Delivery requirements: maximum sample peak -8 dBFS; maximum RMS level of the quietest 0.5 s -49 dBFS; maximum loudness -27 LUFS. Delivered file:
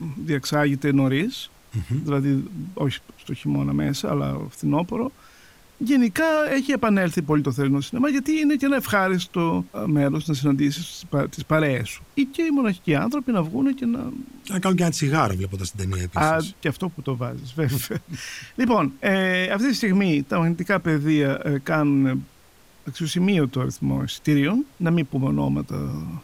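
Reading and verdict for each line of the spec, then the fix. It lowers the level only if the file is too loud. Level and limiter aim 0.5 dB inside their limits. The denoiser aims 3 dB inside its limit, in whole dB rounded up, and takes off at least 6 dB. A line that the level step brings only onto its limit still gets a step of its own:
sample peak -5.5 dBFS: fail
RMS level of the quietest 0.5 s -53 dBFS: pass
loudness -23.0 LUFS: fail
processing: trim -4.5 dB

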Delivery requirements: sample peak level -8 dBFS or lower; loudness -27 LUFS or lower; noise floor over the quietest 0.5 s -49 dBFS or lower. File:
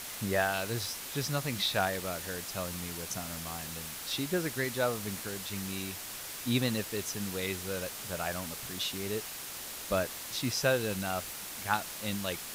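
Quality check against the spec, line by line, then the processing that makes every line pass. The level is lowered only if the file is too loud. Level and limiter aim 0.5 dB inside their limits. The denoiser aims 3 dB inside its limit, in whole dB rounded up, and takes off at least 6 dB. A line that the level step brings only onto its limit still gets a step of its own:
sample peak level -12.5 dBFS: pass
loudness -33.5 LUFS: pass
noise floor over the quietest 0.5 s -42 dBFS: fail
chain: noise reduction 10 dB, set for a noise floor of -42 dBFS

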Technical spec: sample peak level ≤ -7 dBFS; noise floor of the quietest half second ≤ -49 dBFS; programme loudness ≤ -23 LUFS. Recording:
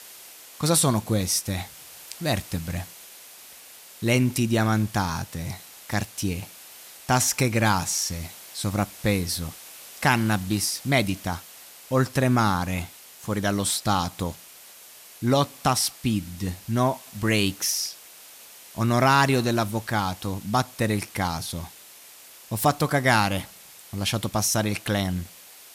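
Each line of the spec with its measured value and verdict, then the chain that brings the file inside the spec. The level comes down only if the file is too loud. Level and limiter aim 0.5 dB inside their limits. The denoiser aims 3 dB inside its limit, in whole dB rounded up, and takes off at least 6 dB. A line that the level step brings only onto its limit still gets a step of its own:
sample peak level -5.5 dBFS: fail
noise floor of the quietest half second -48 dBFS: fail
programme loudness -24.5 LUFS: pass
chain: noise reduction 6 dB, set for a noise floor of -48 dBFS; peak limiter -7.5 dBFS

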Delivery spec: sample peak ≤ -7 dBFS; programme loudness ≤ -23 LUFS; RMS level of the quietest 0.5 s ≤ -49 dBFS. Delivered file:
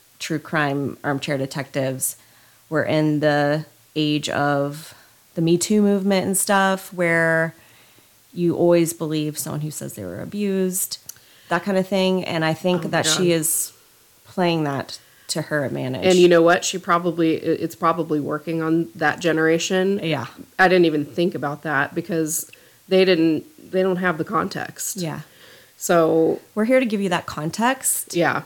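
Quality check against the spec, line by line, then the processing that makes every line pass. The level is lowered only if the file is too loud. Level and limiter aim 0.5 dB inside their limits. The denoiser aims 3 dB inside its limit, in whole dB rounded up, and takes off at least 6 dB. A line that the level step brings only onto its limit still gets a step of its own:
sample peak -5.0 dBFS: fail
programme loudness -20.5 LUFS: fail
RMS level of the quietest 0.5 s -54 dBFS: pass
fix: trim -3 dB

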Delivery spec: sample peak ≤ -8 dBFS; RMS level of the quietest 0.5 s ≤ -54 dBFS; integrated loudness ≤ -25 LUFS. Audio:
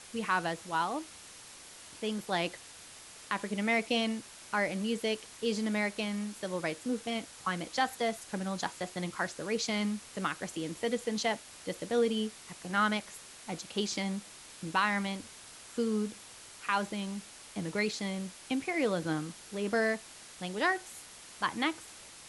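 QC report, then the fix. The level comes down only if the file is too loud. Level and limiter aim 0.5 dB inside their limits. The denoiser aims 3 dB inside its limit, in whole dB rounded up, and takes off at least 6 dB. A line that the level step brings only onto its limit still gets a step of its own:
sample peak -14.5 dBFS: pass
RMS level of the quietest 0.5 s -51 dBFS: fail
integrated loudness -33.5 LUFS: pass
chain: noise reduction 6 dB, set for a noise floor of -51 dBFS

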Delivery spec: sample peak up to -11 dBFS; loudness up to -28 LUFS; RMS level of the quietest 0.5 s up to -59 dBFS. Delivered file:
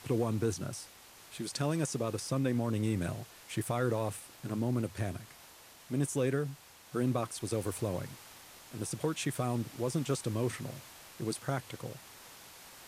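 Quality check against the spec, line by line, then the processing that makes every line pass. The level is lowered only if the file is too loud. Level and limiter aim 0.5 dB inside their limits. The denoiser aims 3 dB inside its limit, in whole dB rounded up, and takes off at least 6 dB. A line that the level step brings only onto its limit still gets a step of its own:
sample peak -19.5 dBFS: pass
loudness -35.0 LUFS: pass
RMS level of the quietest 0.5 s -55 dBFS: fail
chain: noise reduction 7 dB, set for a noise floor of -55 dBFS

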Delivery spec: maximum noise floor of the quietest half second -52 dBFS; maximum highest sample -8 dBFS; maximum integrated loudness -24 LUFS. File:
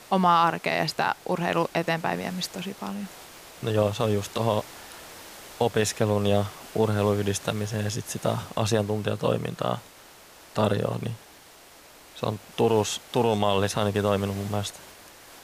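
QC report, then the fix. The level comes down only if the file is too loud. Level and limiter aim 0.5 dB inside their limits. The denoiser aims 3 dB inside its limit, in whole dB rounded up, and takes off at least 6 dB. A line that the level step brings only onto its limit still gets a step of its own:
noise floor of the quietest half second -51 dBFS: fail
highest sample -9.5 dBFS: pass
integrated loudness -26.5 LUFS: pass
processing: noise reduction 6 dB, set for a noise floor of -51 dBFS

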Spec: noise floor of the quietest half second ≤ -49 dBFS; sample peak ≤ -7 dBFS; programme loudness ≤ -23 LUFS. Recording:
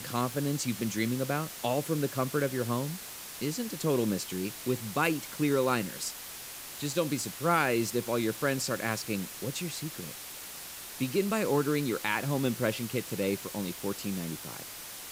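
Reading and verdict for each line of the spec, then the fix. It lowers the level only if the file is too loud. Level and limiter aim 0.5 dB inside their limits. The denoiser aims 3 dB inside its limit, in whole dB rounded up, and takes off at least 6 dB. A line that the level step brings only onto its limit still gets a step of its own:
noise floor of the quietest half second -43 dBFS: fail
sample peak -13.0 dBFS: pass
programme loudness -31.5 LUFS: pass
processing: noise reduction 9 dB, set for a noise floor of -43 dBFS

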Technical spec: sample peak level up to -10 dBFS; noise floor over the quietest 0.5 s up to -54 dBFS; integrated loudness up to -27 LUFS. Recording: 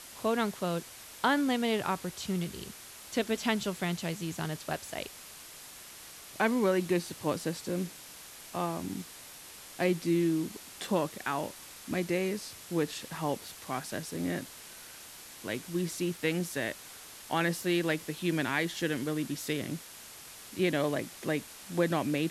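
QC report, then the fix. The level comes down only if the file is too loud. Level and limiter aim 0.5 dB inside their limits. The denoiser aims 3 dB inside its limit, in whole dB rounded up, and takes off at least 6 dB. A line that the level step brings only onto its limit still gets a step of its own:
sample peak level -14.5 dBFS: pass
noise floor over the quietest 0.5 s -49 dBFS: fail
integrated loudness -32.5 LUFS: pass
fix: noise reduction 8 dB, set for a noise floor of -49 dBFS

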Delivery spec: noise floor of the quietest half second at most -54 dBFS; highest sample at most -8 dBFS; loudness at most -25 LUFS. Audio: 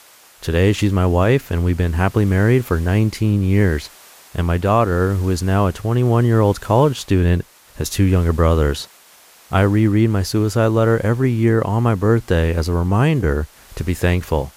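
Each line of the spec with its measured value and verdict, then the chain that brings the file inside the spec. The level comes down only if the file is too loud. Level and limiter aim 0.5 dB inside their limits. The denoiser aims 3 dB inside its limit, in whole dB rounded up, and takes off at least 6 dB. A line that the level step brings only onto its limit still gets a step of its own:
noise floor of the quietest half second -48 dBFS: fail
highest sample -3.5 dBFS: fail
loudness -17.5 LUFS: fail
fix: trim -8 dB

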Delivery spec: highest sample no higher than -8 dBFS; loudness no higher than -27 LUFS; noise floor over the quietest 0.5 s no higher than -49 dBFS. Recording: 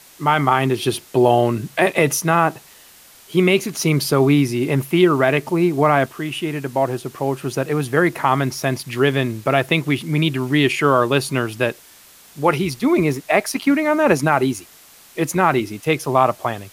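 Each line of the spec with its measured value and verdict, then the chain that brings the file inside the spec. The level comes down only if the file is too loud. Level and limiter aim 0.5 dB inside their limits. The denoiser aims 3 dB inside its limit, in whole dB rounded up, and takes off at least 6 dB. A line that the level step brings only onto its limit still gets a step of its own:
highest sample -3.0 dBFS: fail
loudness -18.5 LUFS: fail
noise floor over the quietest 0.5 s -47 dBFS: fail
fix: trim -9 dB

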